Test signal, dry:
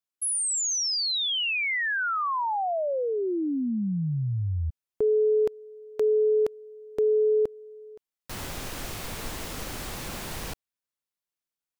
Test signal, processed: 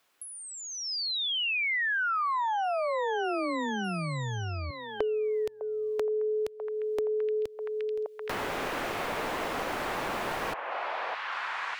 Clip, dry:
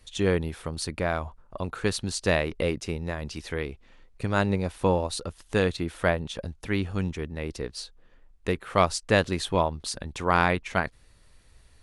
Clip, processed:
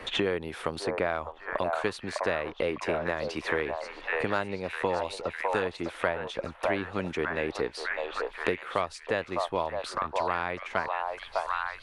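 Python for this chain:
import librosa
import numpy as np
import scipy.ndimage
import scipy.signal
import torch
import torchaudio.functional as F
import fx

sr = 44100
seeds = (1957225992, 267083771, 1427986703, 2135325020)

y = fx.rider(x, sr, range_db=4, speed_s=0.5)
y = fx.bass_treble(y, sr, bass_db=-13, treble_db=-11)
y = fx.echo_stepped(y, sr, ms=604, hz=790.0, octaves=0.7, feedback_pct=70, wet_db=-2)
y = fx.band_squash(y, sr, depth_pct=100)
y = y * librosa.db_to_amplitude(-2.0)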